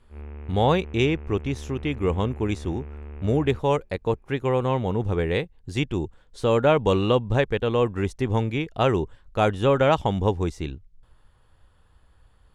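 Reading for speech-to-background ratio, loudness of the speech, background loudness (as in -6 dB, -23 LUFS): 16.0 dB, -24.0 LUFS, -40.0 LUFS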